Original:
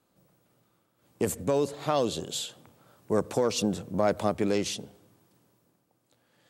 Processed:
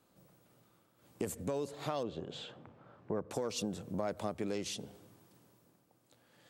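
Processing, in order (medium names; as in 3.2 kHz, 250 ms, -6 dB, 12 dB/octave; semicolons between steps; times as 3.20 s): 2.03–3.31 s: low-pass 2 kHz 12 dB/octave; compression 2.5:1, threshold -40 dBFS, peak gain reduction 13.5 dB; trim +1 dB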